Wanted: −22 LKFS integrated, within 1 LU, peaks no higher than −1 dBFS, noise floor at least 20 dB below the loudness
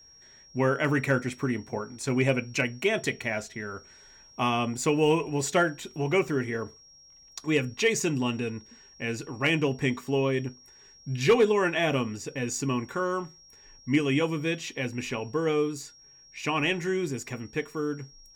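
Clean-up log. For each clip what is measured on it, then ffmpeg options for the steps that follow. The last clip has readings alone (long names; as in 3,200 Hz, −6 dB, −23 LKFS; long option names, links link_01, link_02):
interfering tone 5,600 Hz; level of the tone −52 dBFS; integrated loudness −28.0 LKFS; sample peak −13.0 dBFS; target loudness −22.0 LKFS
→ -af "bandreject=frequency=5600:width=30"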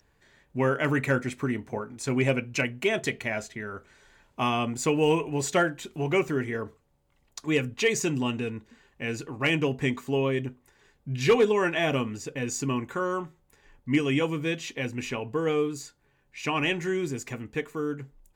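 interfering tone none found; integrated loudness −28.0 LKFS; sample peak −13.0 dBFS; target loudness −22.0 LKFS
→ -af "volume=6dB"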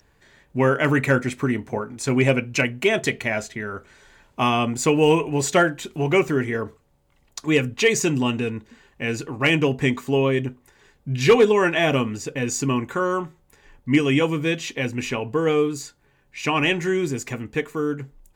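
integrated loudness −22.0 LKFS; sample peak −7.0 dBFS; background noise floor −61 dBFS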